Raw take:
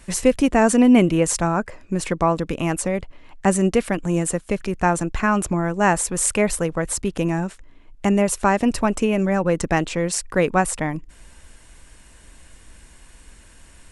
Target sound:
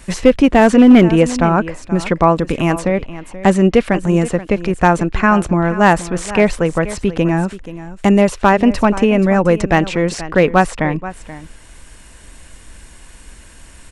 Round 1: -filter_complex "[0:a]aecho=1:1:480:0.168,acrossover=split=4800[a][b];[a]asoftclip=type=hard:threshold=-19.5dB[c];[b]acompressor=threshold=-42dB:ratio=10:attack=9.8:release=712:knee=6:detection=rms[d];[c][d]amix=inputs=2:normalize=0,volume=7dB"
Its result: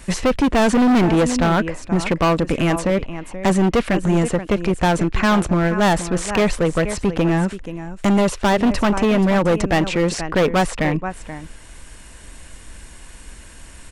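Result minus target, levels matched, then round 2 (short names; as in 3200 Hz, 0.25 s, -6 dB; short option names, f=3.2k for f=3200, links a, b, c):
hard clip: distortion +17 dB
-filter_complex "[0:a]aecho=1:1:480:0.168,acrossover=split=4800[a][b];[a]asoftclip=type=hard:threshold=-8.5dB[c];[b]acompressor=threshold=-42dB:ratio=10:attack=9.8:release=712:knee=6:detection=rms[d];[c][d]amix=inputs=2:normalize=0,volume=7dB"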